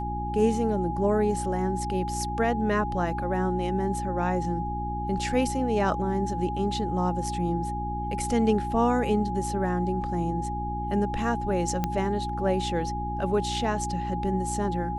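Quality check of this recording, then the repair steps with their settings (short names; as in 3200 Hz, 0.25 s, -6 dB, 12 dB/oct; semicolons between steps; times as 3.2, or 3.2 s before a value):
hum 60 Hz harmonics 6 -33 dBFS
tone 830 Hz -31 dBFS
11.84 pop -13 dBFS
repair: de-click; de-hum 60 Hz, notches 6; notch 830 Hz, Q 30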